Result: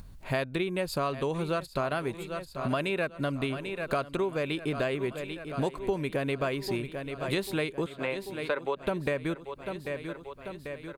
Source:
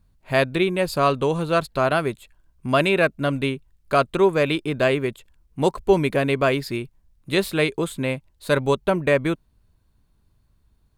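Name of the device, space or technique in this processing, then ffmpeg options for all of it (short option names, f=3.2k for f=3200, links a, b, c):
upward and downward compression: -filter_complex "[0:a]asettb=1/sr,asplit=3[a][b][c];[a]atrim=end=7.864[d];[b]atrim=start=7.86:end=8.77,asetpts=PTS-STARTPTS,afade=t=in:d=0.004:c=qsin,afade=t=out:st=0.906:d=0.004:c=qsin,acrossover=split=370 3400:gain=0.0891 1 0.0891[e][f][g];[e][f][g]amix=inputs=3:normalize=0[h];[c]atrim=start=8.766[i];[d][h]acrossfade=d=0.004:c1=hsin:c2=qsin[j];[j][i]acrossfade=d=0.004:c1=qsin:c2=hsin,aecho=1:1:792|1584|2376|3168|3960:0.158|0.0903|0.0515|0.0294|0.0167,acompressor=mode=upward:threshold=-36dB:ratio=2.5,acompressor=threshold=-27dB:ratio=6"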